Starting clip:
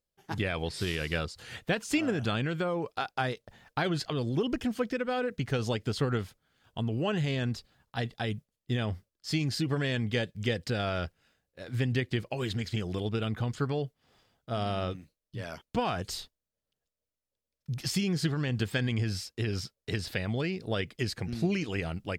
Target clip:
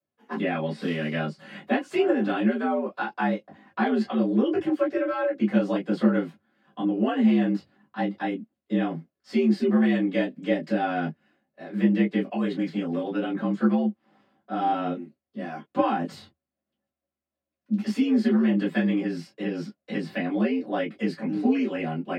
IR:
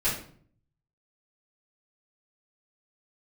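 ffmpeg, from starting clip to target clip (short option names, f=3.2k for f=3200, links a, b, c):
-filter_complex "[0:a]afreqshift=75,acrossover=split=160 2400:gain=0.0891 1 0.141[a][b][c];[a][b][c]amix=inputs=3:normalize=0[d];[1:a]atrim=start_sample=2205,afade=t=out:st=0.13:d=0.01,atrim=end_sample=6174,asetrate=74970,aresample=44100[e];[d][e]afir=irnorm=-1:irlink=0"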